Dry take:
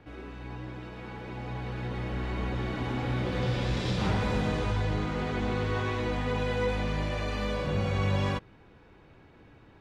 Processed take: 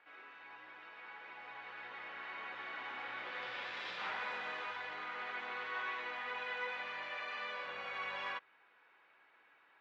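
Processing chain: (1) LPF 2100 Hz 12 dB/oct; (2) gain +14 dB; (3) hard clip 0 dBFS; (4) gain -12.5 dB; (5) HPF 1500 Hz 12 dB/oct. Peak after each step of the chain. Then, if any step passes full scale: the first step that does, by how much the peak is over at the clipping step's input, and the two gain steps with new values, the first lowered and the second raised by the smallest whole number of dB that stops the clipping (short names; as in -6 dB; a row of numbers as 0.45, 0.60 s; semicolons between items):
-18.0, -4.0, -4.0, -16.5, -28.5 dBFS; no overload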